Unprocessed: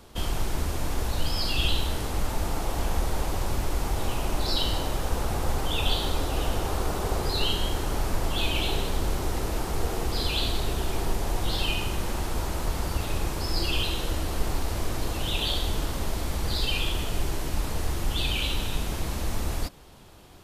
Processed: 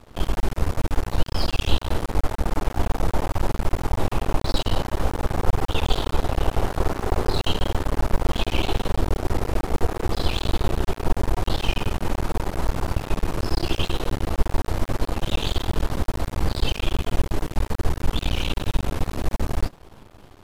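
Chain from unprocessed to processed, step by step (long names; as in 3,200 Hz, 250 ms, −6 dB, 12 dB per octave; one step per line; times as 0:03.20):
high-shelf EQ 2,500 Hz −11 dB
half-wave rectification
level +8.5 dB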